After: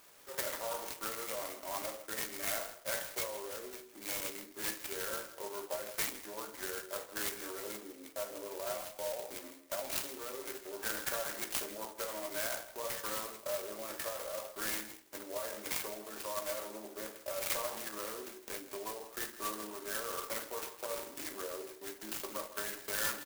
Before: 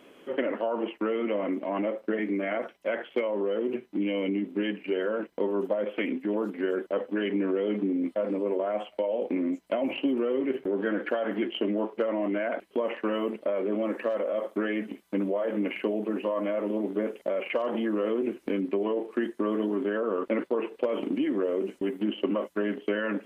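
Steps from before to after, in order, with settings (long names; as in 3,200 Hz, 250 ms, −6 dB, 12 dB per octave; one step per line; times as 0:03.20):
high-pass filter 1,300 Hz 12 dB per octave
far-end echo of a speakerphone 160 ms, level −14 dB
rectangular room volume 280 cubic metres, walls furnished, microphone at 1.2 metres
converter with an unsteady clock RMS 0.11 ms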